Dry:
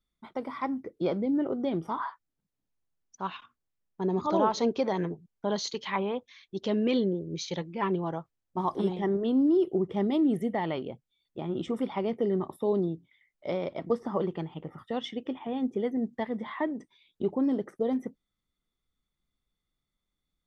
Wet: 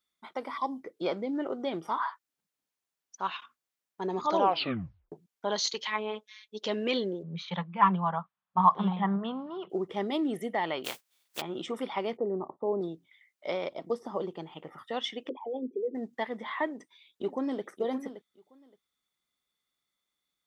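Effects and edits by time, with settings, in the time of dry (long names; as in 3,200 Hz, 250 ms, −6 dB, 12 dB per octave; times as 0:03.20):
0:00.57–0:00.80: gain on a spectral selection 1,200–3,000 Hz −23 dB
0:04.38: tape stop 0.74 s
0:05.87–0:06.63: phases set to zero 214 Hz
0:07.23–0:09.70: drawn EQ curve 110 Hz 0 dB, 190 Hz +14 dB, 300 Hz −16 dB, 620 Hz −1 dB, 1,100 Hz +10 dB, 2,000 Hz −2 dB, 3,500 Hz −3 dB, 5,000 Hz −20 dB, 8,200 Hz −26 dB
0:10.84–0:11.40: compressing power law on the bin magnitudes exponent 0.33
0:12.17–0:12.81: low-pass filter 1,000 Hz 24 dB per octave
0:13.69–0:14.47: parametric band 1,800 Hz −11 dB 1.7 octaves
0:15.29–0:15.95: spectral envelope exaggerated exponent 3
0:16.66–0:17.64: delay throw 570 ms, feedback 15%, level −11 dB
whole clip: high-pass filter 940 Hz 6 dB per octave; level +5 dB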